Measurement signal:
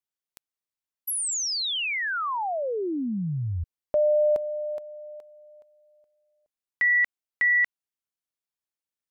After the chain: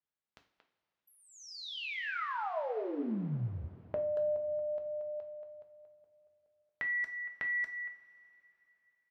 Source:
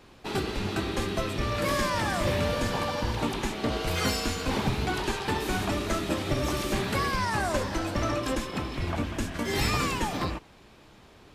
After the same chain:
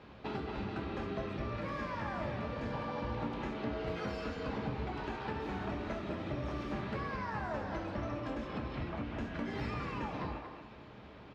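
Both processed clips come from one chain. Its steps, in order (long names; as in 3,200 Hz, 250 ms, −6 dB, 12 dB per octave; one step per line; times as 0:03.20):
high-pass filter 50 Hz
dynamic equaliser 3,500 Hz, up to −4 dB, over −42 dBFS, Q 1.2
downward compressor 4 to 1, threshold −38 dBFS
high-frequency loss of the air 250 metres
far-end echo of a speakerphone 230 ms, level −6 dB
coupled-rooms reverb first 0.42 s, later 3.5 s, from −18 dB, DRR 4 dB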